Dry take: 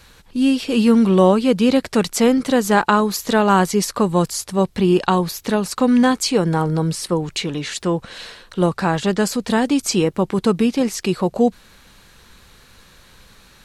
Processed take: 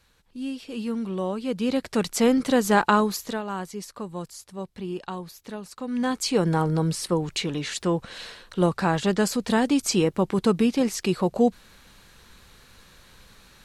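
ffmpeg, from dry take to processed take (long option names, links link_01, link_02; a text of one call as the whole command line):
ffmpeg -i in.wav -af "volume=9dB,afade=type=in:start_time=1.29:duration=1.1:silence=0.266073,afade=type=out:start_time=3.01:duration=0.41:silence=0.223872,afade=type=in:start_time=5.87:duration=0.56:silence=0.223872" out.wav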